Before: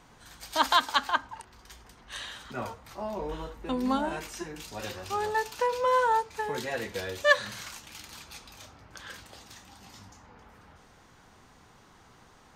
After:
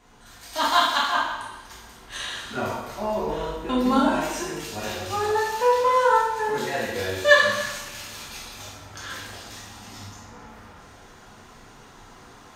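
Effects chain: two-slope reverb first 0.97 s, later 2.9 s, from -25 dB, DRR -6.5 dB; gain riding within 3 dB 2 s; trim -1 dB

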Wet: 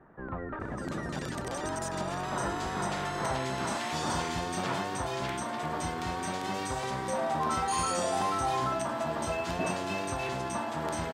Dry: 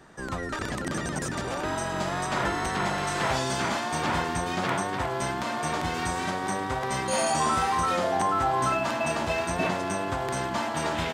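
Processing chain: bands offset in time lows, highs 600 ms, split 1.8 kHz; trim -4 dB

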